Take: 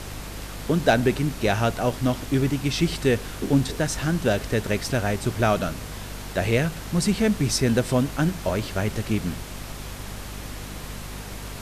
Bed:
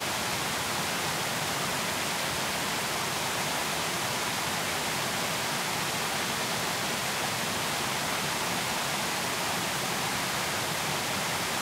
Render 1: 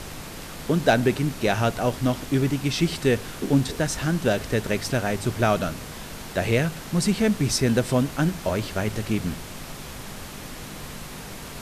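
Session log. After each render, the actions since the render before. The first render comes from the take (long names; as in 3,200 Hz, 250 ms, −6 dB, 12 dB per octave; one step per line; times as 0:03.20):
hum removal 50 Hz, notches 2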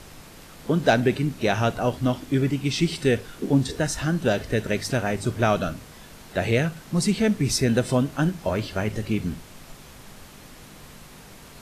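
noise reduction from a noise print 8 dB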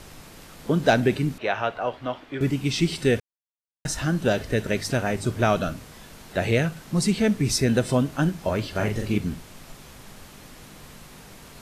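0:01.38–0:02.41: three-way crossover with the lows and the highs turned down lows −15 dB, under 450 Hz, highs −22 dB, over 3,600 Hz
0:03.20–0:03.85: silence
0:08.71–0:09.18: double-tracking delay 39 ms −3.5 dB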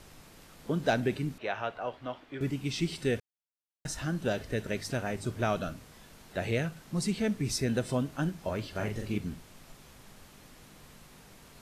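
level −8.5 dB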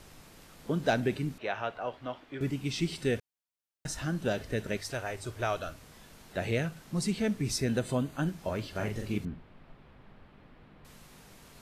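0:04.77–0:05.83: parametric band 200 Hz −15 dB 0.99 octaves
0:07.80–0:08.27: Butterworth band-reject 5,400 Hz, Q 6.1
0:09.25–0:10.85: high-frequency loss of the air 440 metres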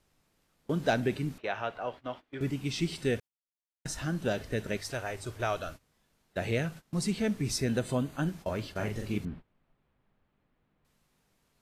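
noise gate −43 dBFS, range −19 dB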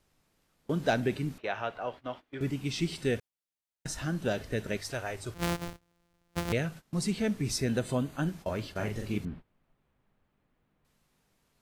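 0:05.34–0:06.53: samples sorted by size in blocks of 256 samples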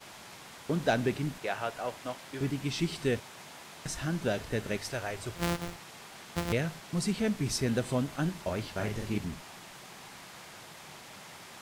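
mix in bed −18.5 dB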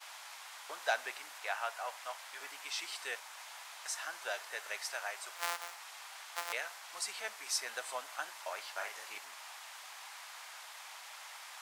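high-pass filter 780 Hz 24 dB per octave
dynamic equaliser 3,300 Hz, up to −3 dB, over −51 dBFS, Q 1.3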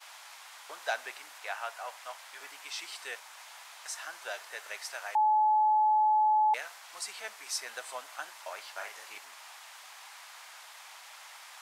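0:05.15–0:06.54: beep over 857 Hz −21.5 dBFS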